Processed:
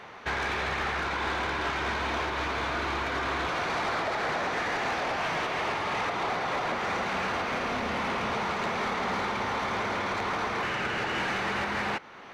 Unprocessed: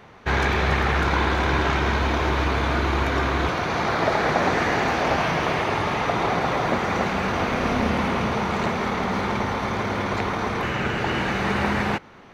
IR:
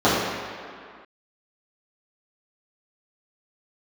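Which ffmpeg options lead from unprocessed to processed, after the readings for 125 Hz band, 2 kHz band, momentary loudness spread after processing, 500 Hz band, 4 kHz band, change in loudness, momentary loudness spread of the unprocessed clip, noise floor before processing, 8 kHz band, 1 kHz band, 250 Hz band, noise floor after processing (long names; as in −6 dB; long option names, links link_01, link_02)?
−14.0 dB, −4.5 dB, 1 LU, −8.0 dB, −4.0 dB, −6.5 dB, 4 LU, −31 dBFS, −5.0 dB, −5.5 dB, −11.0 dB, −34 dBFS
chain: -filter_complex "[0:a]alimiter=limit=-18.5dB:level=0:latency=1:release=378,asplit=2[link_01][link_02];[link_02]highpass=frequency=720:poles=1,volume=14dB,asoftclip=type=tanh:threshold=-18.5dB[link_03];[link_01][link_03]amix=inputs=2:normalize=0,lowpass=frequency=5700:poles=1,volume=-6dB,volume=-4dB"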